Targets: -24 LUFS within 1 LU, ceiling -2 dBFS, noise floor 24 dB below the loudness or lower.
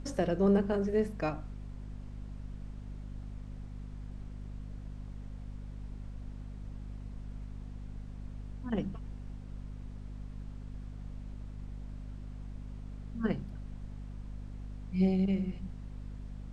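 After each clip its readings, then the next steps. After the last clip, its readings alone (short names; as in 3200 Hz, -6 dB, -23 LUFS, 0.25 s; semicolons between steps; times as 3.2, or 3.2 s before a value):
hum 50 Hz; harmonics up to 250 Hz; hum level -40 dBFS; noise floor -46 dBFS; noise floor target -62 dBFS; loudness -38.0 LUFS; peak -16.5 dBFS; loudness target -24.0 LUFS
-> de-hum 50 Hz, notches 5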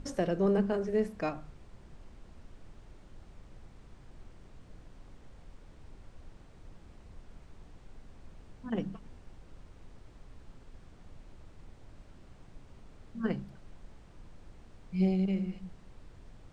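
hum none; noise floor -55 dBFS; noise floor target -57 dBFS
-> noise print and reduce 6 dB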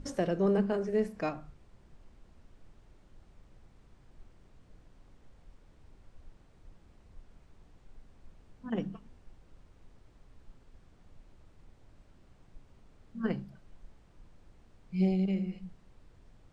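noise floor -61 dBFS; loudness -32.5 LUFS; peak -17.5 dBFS; loudness target -24.0 LUFS
-> gain +8.5 dB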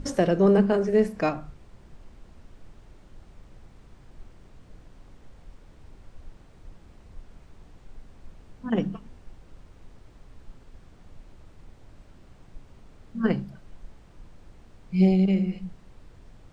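loudness -24.0 LUFS; peak -9.0 dBFS; noise floor -53 dBFS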